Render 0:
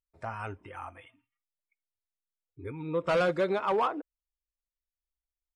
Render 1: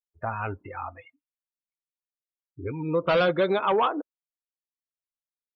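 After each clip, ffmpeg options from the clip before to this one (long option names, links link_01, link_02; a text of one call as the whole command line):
ffmpeg -i in.wav -filter_complex "[0:a]afftdn=noise_reduction=34:noise_floor=-46,adynamicequalizer=threshold=0.00158:dfrequency=3400:dqfactor=3.2:tfrequency=3400:tqfactor=3.2:attack=5:release=100:ratio=0.375:range=3.5:mode=boostabove:tftype=bell,asplit=2[link_01][link_02];[link_02]acompressor=threshold=-29dB:ratio=6,volume=1.5dB[link_03];[link_01][link_03]amix=inputs=2:normalize=0" out.wav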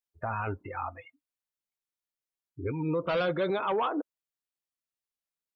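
ffmpeg -i in.wav -af "alimiter=limit=-22.5dB:level=0:latency=1:release=11" out.wav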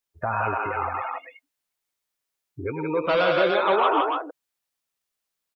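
ffmpeg -i in.wav -filter_complex "[0:a]acrossover=split=400[link_01][link_02];[link_01]acompressor=threshold=-41dB:ratio=6[link_03];[link_02]aecho=1:1:105|169.1|291.5:0.501|0.708|0.631[link_04];[link_03][link_04]amix=inputs=2:normalize=0,volume=7dB" out.wav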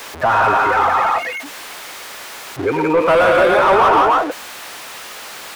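ffmpeg -i in.wav -filter_complex "[0:a]aeval=exprs='val(0)+0.5*0.0211*sgn(val(0))':channel_layout=same,asplit=2[link_01][link_02];[link_02]highpass=frequency=720:poles=1,volume=20dB,asoftclip=type=tanh:threshold=-7dB[link_03];[link_01][link_03]amix=inputs=2:normalize=0,lowpass=frequency=2300:poles=1,volume=-6dB,acrossover=split=190|390|2200[link_04][link_05][link_06][link_07];[link_07]asoftclip=type=tanh:threshold=-33.5dB[link_08];[link_04][link_05][link_06][link_08]amix=inputs=4:normalize=0,volume=3dB" out.wav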